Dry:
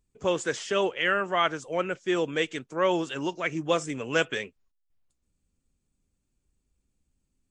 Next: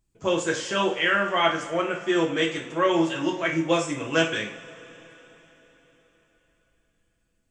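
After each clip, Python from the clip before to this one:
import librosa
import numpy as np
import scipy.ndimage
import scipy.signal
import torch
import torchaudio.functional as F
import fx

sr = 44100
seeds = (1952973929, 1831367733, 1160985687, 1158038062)

y = fx.peak_eq(x, sr, hz=420.0, db=-3.5, octaves=0.33)
y = fx.rev_double_slope(y, sr, seeds[0], early_s=0.41, late_s=4.3, knee_db=-22, drr_db=-1.0)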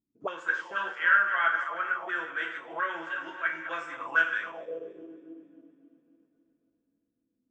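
y = fx.reverse_delay_fb(x, sr, ms=137, feedback_pct=73, wet_db=-11.0)
y = fx.auto_wah(y, sr, base_hz=260.0, top_hz=1500.0, q=7.1, full_db=-22.0, direction='up')
y = y * 10.0 ** (6.0 / 20.0)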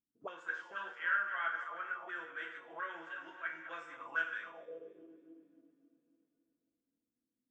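y = fx.comb_fb(x, sr, f0_hz=240.0, decay_s=0.75, harmonics='all', damping=0.0, mix_pct=60)
y = y * 10.0 ** (-3.5 / 20.0)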